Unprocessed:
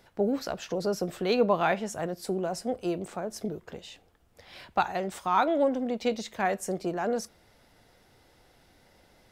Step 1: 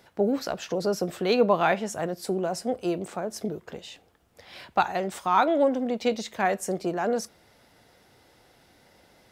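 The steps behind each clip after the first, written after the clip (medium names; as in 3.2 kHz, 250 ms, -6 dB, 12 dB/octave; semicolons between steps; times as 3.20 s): high-pass 98 Hz 6 dB/octave; trim +3 dB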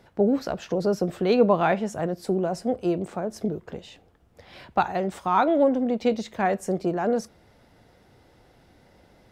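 tilt EQ -2 dB/octave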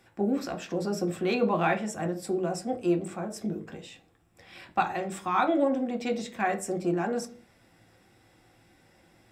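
reverberation RT60 0.35 s, pre-delay 3 ms, DRR 5.5 dB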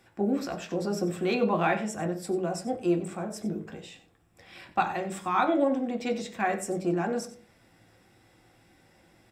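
delay 93 ms -15 dB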